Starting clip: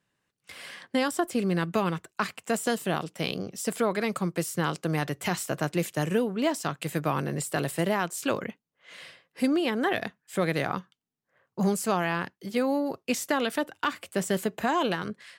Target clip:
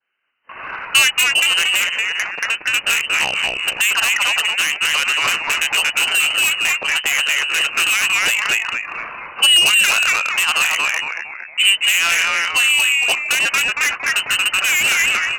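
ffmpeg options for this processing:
ffmpeg -i in.wav -filter_complex "[0:a]lowshelf=frequency=350:gain=-9.5,asplit=6[link_01][link_02][link_03][link_04][link_05][link_06];[link_02]adelay=230,afreqshift=130,volume=-3dB[link_07];[link_03]adelay=460,afreqshift=260,volume=-11.2dB[link_08];[link_04]adelay=690,afreqshift=390,volume=-19.4dB[link_09];[link_05]adelay=920,afreqshift=520,volume=-27.5dB[link_10];[link_06]adelay=1150,afreqshift=650,volume=-35.7dB[link_11];[link_01][link_07][link_08][link_09][link_10][link_11]amix=inputs=6:normalize=0,asettb=1/sr,asplit=3[link_12][link_13][link_14];[link_12]atrim=end=1.834[link_15];[link_13]atrim=start=1.83:end=2.74,asetpts=PTS-STARTPTS,afade=type=in:duration=0.004:curve=qsin,afade=type=out:start_time=0.906:duration=0.004:curve=qsin,acompressor=threshold=-32dB:ratio=4[link_16];[link_14]atrim=start=2.736[link_17];[link_15][link_16]acrossfade=duration=0.004:curve1=hsin:curve2=qsin[link_18];[link_18][link_17]acrossfade=duration=0.004:curve1=qsin:curve2=hsin,highpass=240,lowpass=frequency=2700:width_type=q:width=0.5098,lowpass=frequency=2700:width_type=q:width=0.6013,lowpass=frequency=2700:width_type=q:width=0.9,lowpass=frequency=2700:width_type=q:width=2.563,afreqshift=-3200,dynaudnorm=framelen=230:gausssize=5:maxgain=14dB,asoftclip=type=tanh:threshold=-16dB,crystalizer=i=7:c=0,alimiter=level_in=0dB:limit=-1dB:release=50:level=0:latency=1,adynamicequalizer=threshold=0.0501:dfrequency=1700:dqfactor=0.7:tfrequency=1700:tqfactor=0.7:attack=5:release=100:ratio=0.375:range=2.5:mode=cutabove:tftype=highshelf" out.wav

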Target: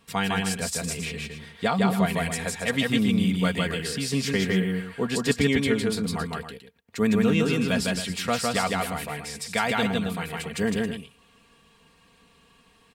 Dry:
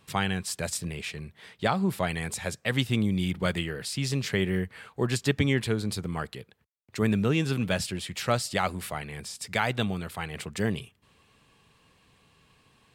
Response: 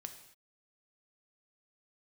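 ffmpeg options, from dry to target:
-af "aecho=1:1:4.3:0.63,aecho=1:1:157.4|271.1:0.794|0.282"

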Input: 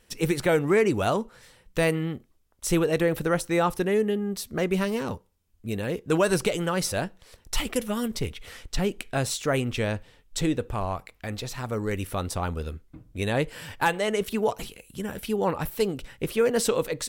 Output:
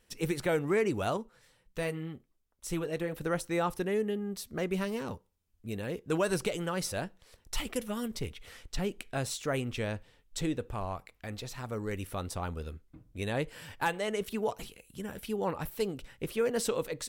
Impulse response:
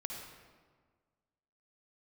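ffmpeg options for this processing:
-filter_complex "[0:a]asettb=1/sr,asplit=3[link_01][link_02][link_03];[link_01]atrim=end=1.174[link_04];[link_02]atrim=start=1.17:end=3.21,asetpts=PTS-STARTPTS,afade=type=in:duration=0.004:curve=qsin,afade=type=out:start_time=2.036:duration=0.004:curve=qsin,flanger=delay=3.9:depth=3.9:regen=-52:speed=1.5:shape=triangular[link_05];[link_03]atrim=start=3.206[link_06];[link_04][link_05]acrossfade=duration=0.004:curve1=hsin:curve2=qsin[link_07];[link_07][link_06]acrossfade=duration=0.004:curve1=qsin:curve2=hsin,volume=-7dB"

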